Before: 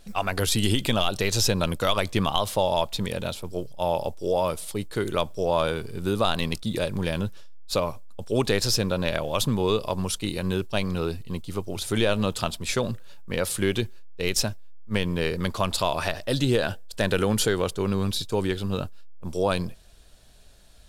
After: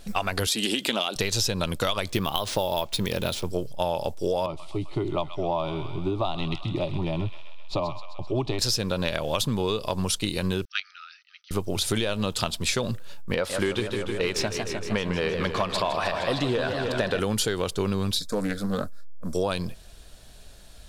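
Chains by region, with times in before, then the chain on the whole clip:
0.47–1.16 s: high-pass 210 Hz 24 dB/octave + loudspeaker Doppler distortion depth 0.12 ms
2.10–3.45 s: careless resampling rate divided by 3×, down none, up hold + peaking EQ 360 Hz +4.5 dB 0.34 oct
4.46–8.59 s: low-pass 2.3 kHz + static phaser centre 320 Hz, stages 8 + feedback echo behind a high-pass 130 ms, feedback 66%, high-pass 1.6 kHz, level -7 dB
10.65–11.51 s: peaking EQ 4.1 kHz -5 dB 0.8 oct + level held to a coarse grid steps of 12 dB + brick-wall FIR band-pass 1.2–6.2 kHz
13.34–17.20 s: overdrive pedal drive 12 dB, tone 1.1 kHz, clips at -8.5 dBFS + modulated delay 154 ms, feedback 73%, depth 164 cents, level -8.5 dB
18.19–19.35 s: static phaser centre 570 Hz, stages 8 + loudspeaker Doppler distortion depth 0.2 ms
whole clip: dynamic bell 4.3 kHz, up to +4 dB, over -42 dBFS, Q 0.72; compression, threshold -28 dBFS; trim +5.5 dB

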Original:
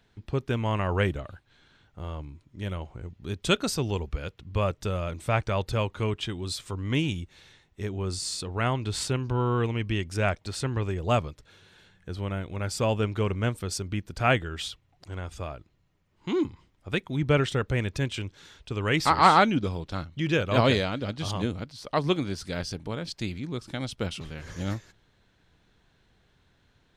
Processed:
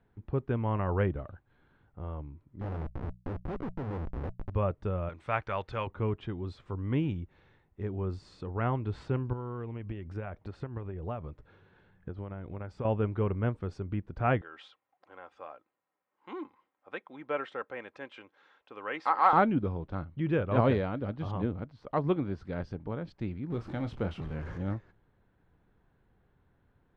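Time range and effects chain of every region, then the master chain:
2.61–4.50 s: low-pass 1.3 kHz + Schmitt trigger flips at -39 dBFS + hum notches 60/120/180 Hz
5.09–5.87 s: tilt shelf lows -9.5 dB, about 810 Hz + tape noise reduction on one side only decoder only
9.33–12.85 s: transient shaper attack +11 dB, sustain +3 dB + compression 3:1, threshold -34 dBFS
14.41–19.33 s: high-pass 650 Hz + comb 3.8 ms, depth 32%
23.50–24.58 s: jump at every zero crossing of -36.5 dBFS + treble shelf 7.9 kHz +10 dB + doubling 26 ms -10 dB
whole clip: low-pass 1.3 kHz 12 dB/octave; band-stop 640 Hz, Q 20; trim -2.5 dB

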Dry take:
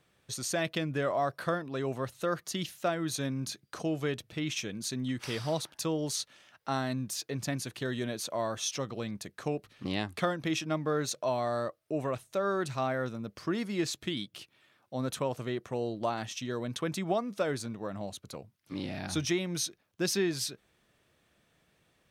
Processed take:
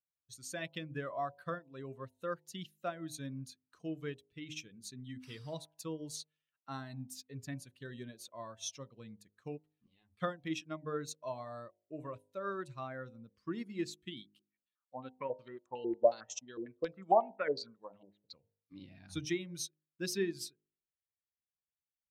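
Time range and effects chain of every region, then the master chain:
9.69–10.20 s: compression 3:1, threshold -40 dBFS + three-phase chorus
14.39–18.34 s: peaking EQ 65 Hz -10.5 dB 2.4 oct + step-sequenced low-pass 11 Hz 370–7100 Hz
whole clip: expander on every frequency bin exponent 1.5; de-hum 51.27 Hz, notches 19; upward expansion 1.5:1, over -55 dBFS; trim +1 dB

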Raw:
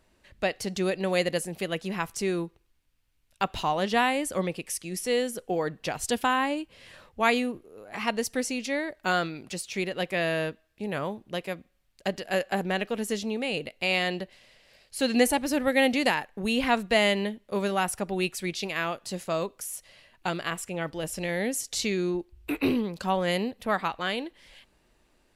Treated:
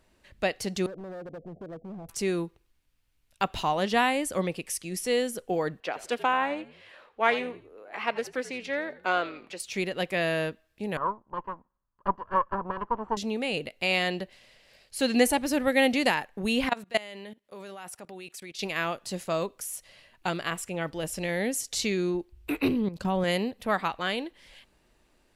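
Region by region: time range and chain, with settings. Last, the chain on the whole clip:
0.86–2.09 s: steep low-pass 740 Hz 96 dB/octave + compression 4:1, threshold -35 dBFS + hard clipper -37 dBFS
5.80–9.60 s: three-band isolator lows -22 dB, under 310 Hz, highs -14 dB, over 3.7 kHz + frequency-shifting echo 85 ms, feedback 35%, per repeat -70 Hz, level -16.5 dB + loudspeaker Doppler distortion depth 0.1 ms
10.97–13.17 s: comb filter that takes the minimum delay 0.65 ms + resonant low-pass 1 kHz, resonance Q 7.6 + upward expansion, over -39 dBFS
16.69–18.59 s: high-pass 330 Hz 6 dB/octave + level held to a coarse grid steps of 21 dB
22.68–23.24 s: bass shelf 410 Hz +10 dB + level held to a coarse grid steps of 13 dB
whole clip: none

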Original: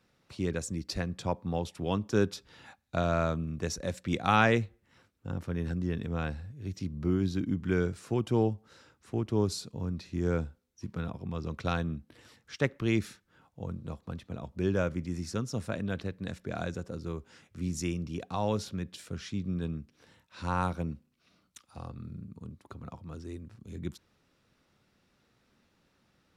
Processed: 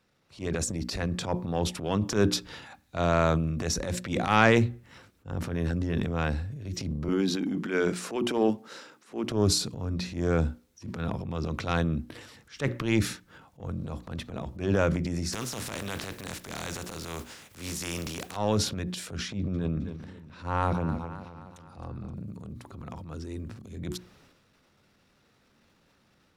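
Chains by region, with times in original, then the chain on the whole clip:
7.08–9.30 s: high-pass 200 Hz 24 dB/octave + dynamic bell 2.4 kHz, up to +4 dB, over -50 dBFS, Q 1.3
15.32–18.35 s: spectral contrast reduction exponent 0.52 + compression 1.5:1, threshold -44 dBFS
19.28–22.14 s: treble shelf 3.2 kHz -10.5 dB + modulated delay 262 ms, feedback 55%, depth 72 cents, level -14.5 dB
whole clip: hum notches 60/120/180/240/300/360 Hz; level rider gain up to 5 dB; transient shaper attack -10 dB, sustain +8 dB

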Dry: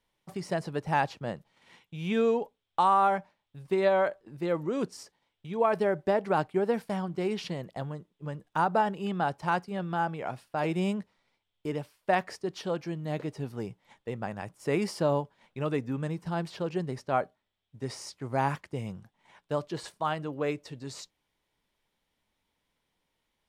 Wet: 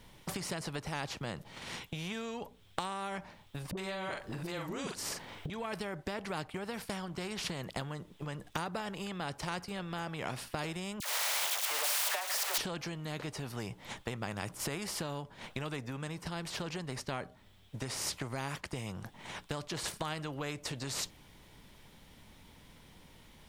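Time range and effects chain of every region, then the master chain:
3.71–5.50 s: doubling 43 ms -7 dB + phase dispersion highs, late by 62 ms, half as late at 370 Hz + three bands compressed up and down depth 70%
11.00–12.58 s: jump at every zero crossing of -30.5 dBFS + steep high-pass 610 Hz 48 dB/octave + phase dispersion lows, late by 62 ms, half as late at 1.4 kHz
whole clip: tone controls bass +11 dB, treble +1 dB; compression 12:1, threshold -36 dBFS; spectrum-flattening compressor 2:1; trim +5.5 dB

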